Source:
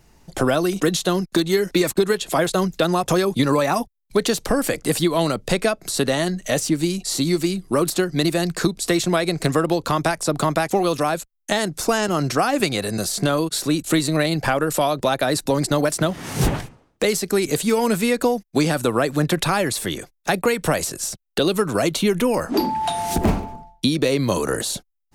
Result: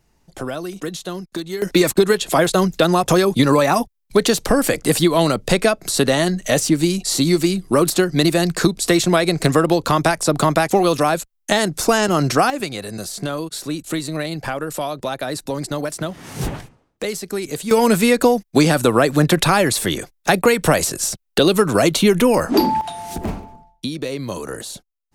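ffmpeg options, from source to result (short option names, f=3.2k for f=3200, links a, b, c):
-af "asetnsamples=n=441:p=0,asendcmd='1.62 volume volume 4dB;12.5 volume volume -5dB;17.71 volume volume 5dB;22.81 volume volume -6.5dB',volume=-8dB"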